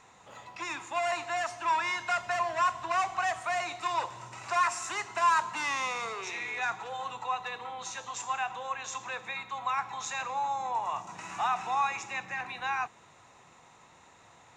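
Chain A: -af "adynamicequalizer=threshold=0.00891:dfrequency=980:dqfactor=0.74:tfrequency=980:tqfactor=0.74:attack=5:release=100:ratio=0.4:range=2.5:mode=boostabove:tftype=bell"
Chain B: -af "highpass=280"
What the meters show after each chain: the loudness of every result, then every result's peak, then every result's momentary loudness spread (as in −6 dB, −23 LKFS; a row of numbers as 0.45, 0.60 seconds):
−28.0, −32.0 LKFS; −11.0, −15.5 dBFS; 11, 10 LU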